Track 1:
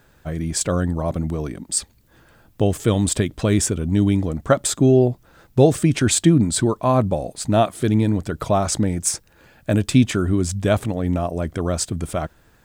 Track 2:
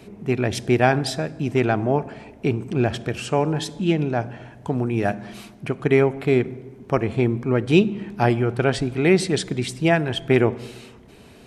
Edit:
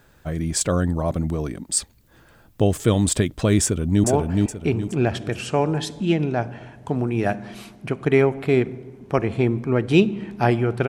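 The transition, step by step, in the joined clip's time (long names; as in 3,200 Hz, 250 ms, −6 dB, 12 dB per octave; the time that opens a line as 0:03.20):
track 1
0:03.64–0:04.04: delay throw 420 ms, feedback 35%, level −2 dB
0:04.04: continue with track 2 from 0:01.83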